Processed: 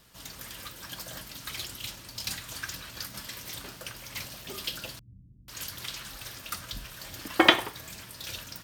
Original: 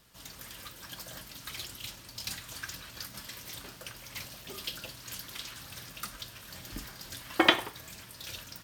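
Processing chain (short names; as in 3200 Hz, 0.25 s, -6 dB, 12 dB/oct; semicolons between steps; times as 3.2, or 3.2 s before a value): 4.99–7.28 bands offset in time lows, highs 0.49 s, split 200 Hz; gain +3.5 dB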